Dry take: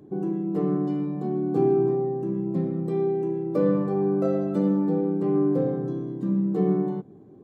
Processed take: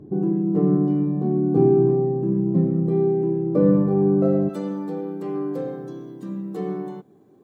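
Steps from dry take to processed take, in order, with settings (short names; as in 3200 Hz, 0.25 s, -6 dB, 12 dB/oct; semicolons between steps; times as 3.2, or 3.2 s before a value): tilt -3 dB/oct, from 4.48 s +3 dB/oct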